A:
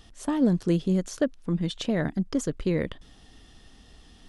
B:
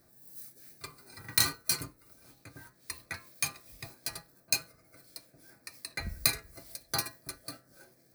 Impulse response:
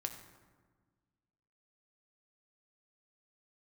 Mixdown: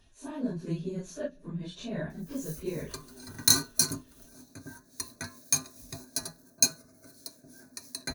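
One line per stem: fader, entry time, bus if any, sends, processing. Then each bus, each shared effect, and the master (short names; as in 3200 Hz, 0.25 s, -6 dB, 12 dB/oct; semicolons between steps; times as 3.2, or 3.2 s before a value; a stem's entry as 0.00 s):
-11.0 dB, 0.00 s, send -15 dB, phase scrambler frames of 0.1 s
+1.5 dB, 2.10 s, no send, fifteen-band EQ 250 Hz +10 dB, 2500 Hz -12 dB, 6300 Hz +7 dB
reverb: on, RT60 1.5 s, pre-delay 4 ms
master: ripple EQ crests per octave 1.5, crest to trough 8 dB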